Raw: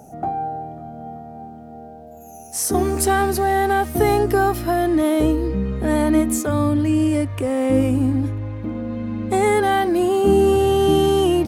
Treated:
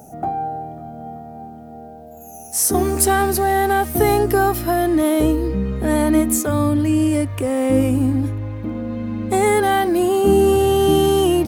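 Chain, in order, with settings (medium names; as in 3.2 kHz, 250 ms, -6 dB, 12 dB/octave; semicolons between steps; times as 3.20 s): treble shelf 11 kHz +11 dB; trim +1 dB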